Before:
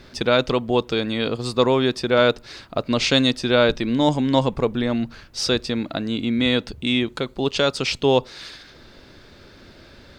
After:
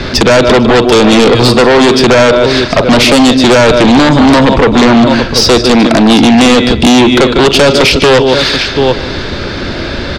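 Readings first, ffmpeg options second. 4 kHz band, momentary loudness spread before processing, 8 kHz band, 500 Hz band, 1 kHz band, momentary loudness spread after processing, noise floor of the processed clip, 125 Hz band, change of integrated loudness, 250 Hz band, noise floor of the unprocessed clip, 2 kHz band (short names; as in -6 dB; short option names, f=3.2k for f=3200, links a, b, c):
+14.5 dB, 8 LU, +18.5 dB, +14.5 dB, +17.0 dB, 6 LU, -17 dBFS, +14.5 dB, +15.0 dB, +16.5 dB, -48 dBFS, +16.0 dB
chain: -filter_complex "[0:a]asplit=2[a][b];[b]aecho=0:1:42|152|734:0.141|0.211|0.1[c];[a][c]amix=inputs=2:normalize=0,acrossover=split=230|620[d][e][f];[d]acompressor=threshold=-38dB:ratio=4[g];[e]acompressor=threshold=-28dB:ratio=4[h];[f]acompressor=threshold=-34dB:ratio=4[i];[g][h][i]amix=inputs=3:normalize=0,apsyclip=22dB,lowpass=5.4k,asplit=2[j][k];[k]aecho=0:1:149|298|447|596|745:0.126|0.0705|0.0395|0.0221|0.0124[l];[j][l]amix=inputs=2:normalize=0,aeval=exprs='1.26*sin(PI/2*2.24*val(0)/1.26)':c=same,volume=-3.5dB"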